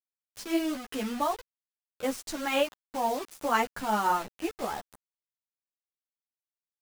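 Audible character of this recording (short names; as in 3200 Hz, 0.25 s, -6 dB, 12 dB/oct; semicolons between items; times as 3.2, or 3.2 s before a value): tremolo triangle 5.9 Hz, depth 50%; a quantiser's noise floor 6-bit, dither none; a shimmering, thickened sound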